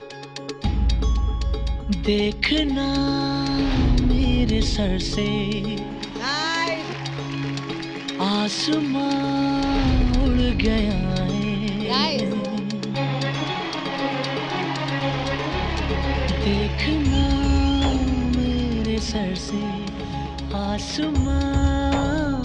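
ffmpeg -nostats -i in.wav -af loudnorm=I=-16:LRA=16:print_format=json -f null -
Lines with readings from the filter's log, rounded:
"input_i" : "-23.0",
"input_tp" : "-5.1",
"input_lra" : "3.2",
"input_thresh" : "-33.1",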